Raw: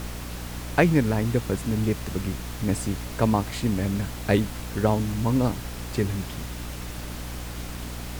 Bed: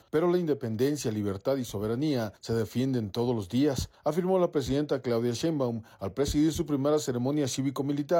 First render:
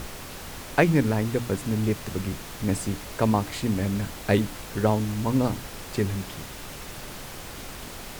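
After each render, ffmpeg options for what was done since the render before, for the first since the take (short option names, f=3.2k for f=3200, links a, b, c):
-af "bandreject=f=60:t=h:w=6,bandreject=f=120:t=h:w=6,bandreject=f=180:t=h:w=6,bandreject=f=240:t=h:w=6,bandreject=f=300:t=h:w=6"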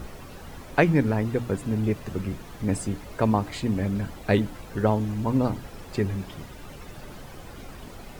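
-af "afftdn=nr=11:nf=-40"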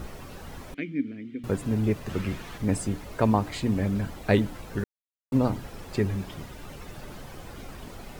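-filter_complex "[0:a]asettb=1/sr,asplit=3[a][b][c];[a]atrim=end=0.744[d];[b]atrim=start=0.74:end=1.44,asetpts=PTS-STARTPTS,afade=t=in:d=0.004:c=qsin,afade=t=out:st=0.696:d=0.004:c=qsin,asplit=3[e][f][g];[e]bandpass=f=270:t=q:w=8,volume=0dB[h];[f]bandpass=f=2.29k:t=q:w=8,volume=-6dB[i];[g]bandpass=f=3.01k:t=q:w=8,volume=-9dB[j];[h][i][j]amix=inputs=3:normalize=0[k];[c]atrim=start=1.436[l];[d][k]acrossfade=d=0.004:c1=hsin:c2=qsin[m];[m][l]acrossfade=d=0.004:c1=qsin:c2=hsin,asettb=1/sr,asplit=3[n][o][p];[n]atrim=end=2.094[q];[o]atrim=start=2.09:end=2.58,asetpts=PTS-STARTPTS,afade=t=in:d=0.004:c=qsin,afade=t=out:st=0.486:d=0.004:c=qsin,equalizer=f=2.4k:t=o:w=2.3:g=7[r];[p]atrim=start=2.576[s];[q][r]acrossfade=d=0.004:c1=hsin:c2=qsin[t];[t][s]acrossfade=d=0.004:c1=qsin:c2=hsin,asplit=3[u][v][w];[u]atrim=end=4.84,asetpts=PTS-STARTPTS,afade=t=out:st=4.836:d=0.004:c=hsin[x];[v]atrim=start=4.84:end=5.32,asetpts=PTS-STARTPTS,volume=0[y];[w]atrim=start=5.32,asetpts=PTS-STARTPTS,afade=t=in:d=0.004:c=hsin[z];[x][y][z]concat=n=3:v=0:a=1"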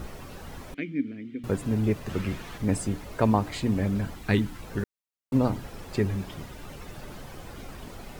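-filter_complex "[0:a]asettb=1/sr,asplit=3[a][b][c];[a]atrim=end=4.154[d];[b]atrim=start=4.15:end=4.62,asetpts=PTS-STARTPTS,afade=t=in:d=0.004:c=qsin,afade=t=out:st=0.466:d=0.004:c=qsin,equalizer=f=580:t=o:w=0.69:g=-12.5[e];[c]atrim=start=4.616[f];[d][e]acrossfade=d=0.004:c1=hsin:c2=qsin[g];[g][f]acrossfade=d=0.004:c1=qsin:c2=hsin"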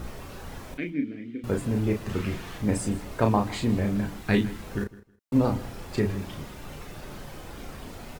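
-filter_complex "[0:a]asplit=2[a][b];[b]adelay=34,volume=-5dB[c];[a][c]amix=inputs=2:normalize=0,aecho=1:1:159|318:0.119|0.0238"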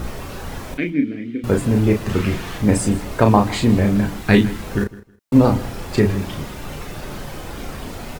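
-af "volume=9.5dB,alimiter=limit=-1dB:level=0:latency=1"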